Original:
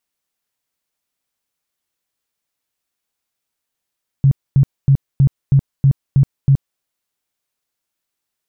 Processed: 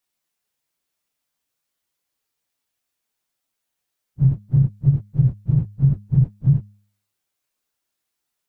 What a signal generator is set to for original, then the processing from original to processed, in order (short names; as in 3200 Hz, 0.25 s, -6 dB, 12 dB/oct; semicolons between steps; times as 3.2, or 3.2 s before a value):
tone bursts 137 Hz, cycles 10, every 0.32 s, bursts 8, -7 dBFS
phase scrambler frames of 0.1 s; compressor, threshold -11 dBFS; de-hum 102.7 Hz, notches 2